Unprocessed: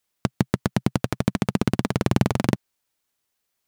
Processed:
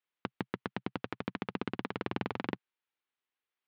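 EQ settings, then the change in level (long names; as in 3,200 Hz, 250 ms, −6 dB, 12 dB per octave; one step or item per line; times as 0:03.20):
loudspeaker in its box 120–3,400 Hz, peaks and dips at 140 Hz −10 dB, 210 Hz −3 dB, 630 Hz −7 dB
low-shelf EQ 280 Hz −7.5 dB
−8.0 dB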